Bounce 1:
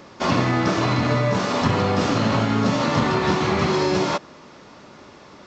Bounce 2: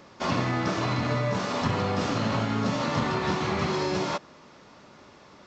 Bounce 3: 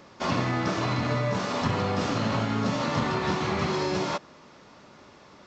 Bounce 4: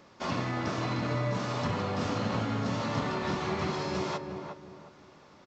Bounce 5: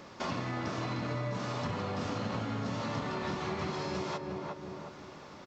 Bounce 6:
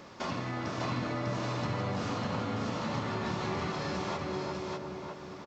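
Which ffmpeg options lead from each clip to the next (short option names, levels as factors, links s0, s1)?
-af "equalizer=f=330:w=1.5:g=-2,volume=0.501"
-af anull
-filter_complex "[0:a]asplit=2[s0][s1];[s1]adelay=357,lowpass=f=1200:p=1,volume=0.562,asplit=2[s2][s3];[s3]adelay=357,lowpass=f=1200:p=1,volume=0.33,asplit=2[s4][s5];[s5]adelay=357,lowpass=f=1200:p=1,volume=0.33,asplit=2[s6][s7];[s7]adelay=357,lowpass=f=1200:p=1,volume=0.33[s8];[s0][s2][s4][s6][s8]amix=inputs=5:normalize=0,volume=0.531"
-af "acompressor=threshold=0.00631:ratio=2.5,volume=2.11"
-af "aecho=1:1:599:0.708"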